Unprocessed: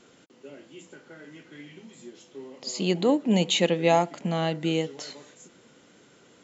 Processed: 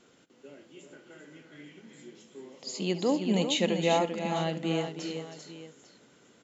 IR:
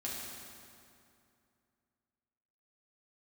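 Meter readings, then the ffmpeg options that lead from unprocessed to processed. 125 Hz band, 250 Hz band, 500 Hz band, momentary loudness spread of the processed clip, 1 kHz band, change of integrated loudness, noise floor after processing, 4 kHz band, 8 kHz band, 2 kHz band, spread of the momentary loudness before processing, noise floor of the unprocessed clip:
-4.5 dB, -4.0 dB, -4.0 dB, 21 LU, -4.0 dB, -4.0 dB, -61 dBFS, -4.0 dB, n/a, -4.0 dB, 18 LU, -57 dBFS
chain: -af "aecho=1:1:68|316|393|848:0.15|0.282|0.422|0.168,volume=-5dB"

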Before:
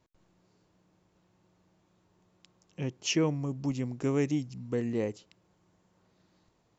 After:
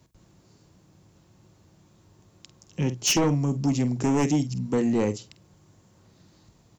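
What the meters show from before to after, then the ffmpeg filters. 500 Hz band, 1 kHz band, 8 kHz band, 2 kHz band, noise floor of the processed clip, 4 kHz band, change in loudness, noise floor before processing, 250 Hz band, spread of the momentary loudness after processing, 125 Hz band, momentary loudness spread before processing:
+4.5 dB, +11.5 dB, n/a, +5.5 dB, -60 dBFS, +7.5 dB, +7.0 dB, -71 dBFS, +7.5 dB, 8 LU, +7.5 dB, 9 LU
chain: -filter_complex "[0:a]highpass=41,bandreject=f=60:t=h:w=6,bandreject=f=120:t=h:w=6,bandreject=f=180:t=h:w=6,asplit=2[a][b];[b]adelay=48,volume=-13dB[c];[a][c]amix=inputs=2:normalize=0,acrossover=split=180[d][e];[d]acompressor=threshold=-46dB:ratio=6[f];[f][e]amix=inputs=2:normalize=0,bass=f=250:g=10,treble=f=4k:g=8,aeval=exprs='0.141*sin(PI/2*1.41*val(0)/0.141)':c=same"

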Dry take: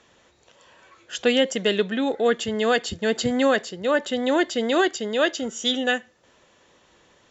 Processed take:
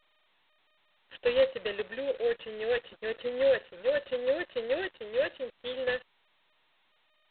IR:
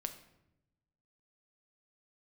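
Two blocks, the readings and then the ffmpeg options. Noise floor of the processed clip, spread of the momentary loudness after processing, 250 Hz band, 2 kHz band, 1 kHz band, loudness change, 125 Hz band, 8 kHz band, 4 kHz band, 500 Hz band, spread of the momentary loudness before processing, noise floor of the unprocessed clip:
-70 dBFS, 8 LU, -20.5 dB, -10.5 dB, -16.5 dB, -8.5 dB, under -15 dB, n/a, -14.0 dB, -5.5 dB, 4 LU, -59 dBFS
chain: -filter_complex "[0:a]asplit=3[a][b][c];[a]bandpass=f=530:t=q:w=8,volume=0dB[d];[b]bandpass=f=1.84k:t=q:w=8,volume=-6dB[e];[c]bandpass=f=2.48k:t=q:w=8,volume=-9dB[f];[d][e][f]amix=inputs=3:normalize=0,acrusher=bits=7:mix=0:aa=0.5,volume=-1.5dB" -ar 8000 -c:a adpcm_g726 -b:a 16k

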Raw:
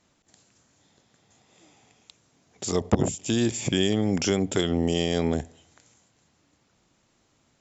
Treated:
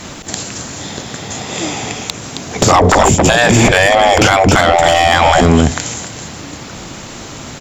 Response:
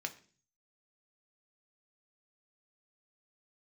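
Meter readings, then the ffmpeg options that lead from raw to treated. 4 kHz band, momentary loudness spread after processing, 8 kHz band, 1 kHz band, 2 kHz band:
+15.5 dB, 20 LU, n/a, +28.0 dB, +24.5 dB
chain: -filter_complex "[0:a]aecho=1:1:268:0.188,asplit=2[a][b];[b]asoftclip=type=hard:threshold=-15dB,volume=-6.5dB[c];[a][c]amix=inputs=2:normalize=0,afftfilt=real='re*lt(hypot(re,im),0.158)':imag='im*lt(hypot(re,im),0.158)':win_size=1024:overlap=0.75,acrossover=split=1800[d][e];[e]acompressor=threshold=-47dB:ratio=10[f];[d][f]amix=inputs=2:normalize=0,asoftclip=type=tanh:threshold=-32.5dB,adynamicequalizer=threshold=0.00158:dfrequency=440:dqfactor=1.7:tfrequency=440:tqfactor=1.7:attack=5:release=100:ratio=0.375:range=2.5:mode=cutabove:tftype=bell,alimiter=level_in=35dB:limit=-1dB:release=50:level=0:latency=1,volume=-1dB"

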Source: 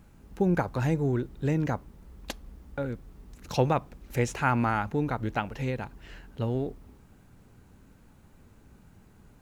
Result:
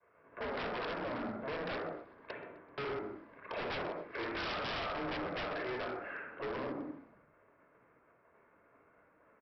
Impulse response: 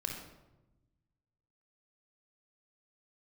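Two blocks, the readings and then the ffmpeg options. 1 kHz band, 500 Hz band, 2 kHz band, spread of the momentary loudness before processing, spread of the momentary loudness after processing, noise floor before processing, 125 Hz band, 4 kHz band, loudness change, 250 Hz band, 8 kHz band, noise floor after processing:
-8.5 dB, -7.5 dB, -4.0 dB, 16 LU, 11 LU, -57 dBFS, -22.0 dB, +1.0 dB, -10.5 dB, -13.0 dB, under -20 dB, -68 dBFS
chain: -filter_complex "[0:a]bandreject=f=60:t=h:w=6,bandreject=f=120:t=h:w=6,bandreject=f=180:t=h:w=6,bandreject=f=240:t=h:w=6,bandreject=f=300:t=h:w=6,bandreject=f=360:t=h:w=6,bandreject=f=420:t=h:w=6,bandreject=f=480:t=h:w=6,agate=range=-33dB:threshold=-48dB:ratio=3:detection=peak,bandreject=f=890:w=12,asplit=2[a][b];[b]acompressor=threshold=-35dB:ratio=6,volume=-2.5dB[c];[a][c]amix=inputs=2:normalize=0,volume=30dB,asoftclip=hard,volume=-30dB,highpass=f=510:t=q:w=0.5412,highpass=f=510:t=q:w=1.307,lowpass=f=2.3k:t=q:w=0.5176,lowpass=f=2.3k:t=q:w=0.7071,lowpass=f=2.3k:t=q:w=1.932,afreqshift=-140[d];[1:a]atrim=start_sample=2205,afade=t=out:st=0.34:d=0.01,atrim=end_sample=15435[e];[d][e]afir=irnorm=-1:irlink=0,aresample=11025,aeval=exprs='0.0158*(abs(mod(val(0)/0.0158+3,4)-2)-1)':c=same,aresample=44100,asplit=5[f][g][h][i][j];[g]adelay=128,afreqshift=-50,volume=-22.5dB[k];[h]adelay=256,afreqshift=-100,volume=-27.9dB[l];[i]adelay=384,afreqshift=-150,volume=-33.2dB[m];[j]adelay=512,afreqshift=-200,volume=-38.6dB[n];[f][k][l][m][n]amix=inputs=5:normalize=0,volume=3dB"

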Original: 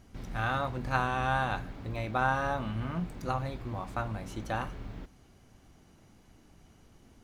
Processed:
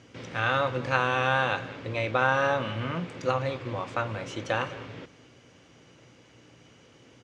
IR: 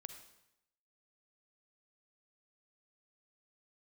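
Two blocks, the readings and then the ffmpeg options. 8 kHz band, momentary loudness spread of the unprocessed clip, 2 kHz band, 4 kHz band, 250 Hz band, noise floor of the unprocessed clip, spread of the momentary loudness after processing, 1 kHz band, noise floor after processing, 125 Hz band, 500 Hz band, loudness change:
+4.5 dB, 10 LU, +7.0 dB, +9.0 dB, +1.5 dB, -60 dBFS, 11 LU, +3.0 dB, -57 dBFS, +1.0 dB, +8.5 dB, +5.0 dB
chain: -filter_complex "[0:a]equalizer=f=2.9k:w=0.84:g=7.5,aeval=exprs='val(0)+0.00126*(sin(2*PI*60*n/s)+sin(2*PI*2*60*n/s)/2+sin(2*PI*3*60*n/s)/3+sin(2*PI*4*60*n/s)/4+sin(2*PI*5*60*n/s)/5)':c=same,asplit=2[a][b];[b]alimiter=limit=-19.5dB:level=0:latency=1:release=163,volume=-3dB[c];[a][c]amix=inputs=2:normalize=0,highpass=f=110:w=0.5412,highpass=f=110:w=1.3066,equalizer=f=200:t=q:w=4:g=-10,equalizer=f=510:t=q:w=4:g=9,equalizer=f=740:t=q:w=4:g=-5,equalizer=f=4.1k:t=q:w=4:g=-4,lowpass=f=7.5k:w=0.5412,lowpass=f=7.5k:w=1.3066,aecho=1:1:203:0.133"

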